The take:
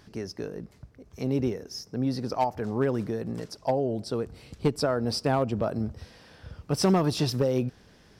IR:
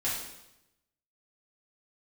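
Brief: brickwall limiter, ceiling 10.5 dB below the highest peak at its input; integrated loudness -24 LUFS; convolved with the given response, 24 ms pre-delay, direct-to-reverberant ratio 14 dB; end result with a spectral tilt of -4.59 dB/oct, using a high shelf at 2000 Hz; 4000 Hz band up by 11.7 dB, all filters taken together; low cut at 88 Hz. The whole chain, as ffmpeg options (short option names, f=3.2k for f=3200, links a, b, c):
-filter_complex "[0:a]highpass=88,highshelf=f=2k:g=6,equalizer=f=4k:t=o:g=9,alimiter=limit=-17.5dB:level=0:latency=1,asplit=2[a][b];[1:a]atrim=start_sample=2205,adelay=24[c];[b][c]afir=irnorm=-1:irlink=0,volume=-21dB[d];[a][d]amix=inputs=2:normalize=0,volume=5dB"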